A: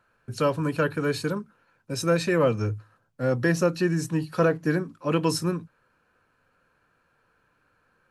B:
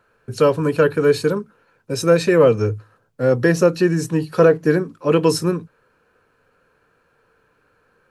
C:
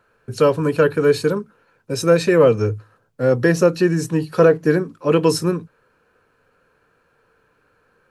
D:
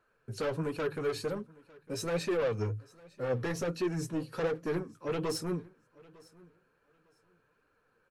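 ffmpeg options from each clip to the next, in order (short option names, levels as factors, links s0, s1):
-af "equalizer=f=440:t=o:w=0.45:g=8.5,volume=1.78"
-af anull
-af "asoftclip=type=tanh:threshold=0.141,flanger=delay=2.4:depth=8.6:regen=41:speed=1.3:shape=triangular,aecho=1:1:903|1806:0.0668|0.0134,volume=0.422"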